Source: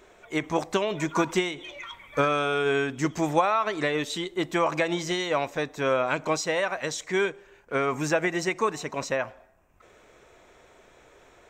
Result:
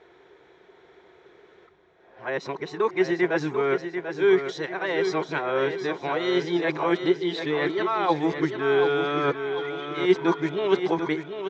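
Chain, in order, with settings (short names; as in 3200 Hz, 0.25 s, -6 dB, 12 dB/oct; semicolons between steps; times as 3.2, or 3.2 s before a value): whole clip reversed; speaker cabinet 110–4200 Hz, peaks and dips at 110 Hz -7 dB, 240 Hz -9 dB, 380 Hz +8 dB, 590 Hz -9 dB, 1200 Hz -5 dB, 2600 Hz -8 dB; on a send: feedback echo 0.741 s, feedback 42%, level -8 dB; on the sum: gain +1.5 dB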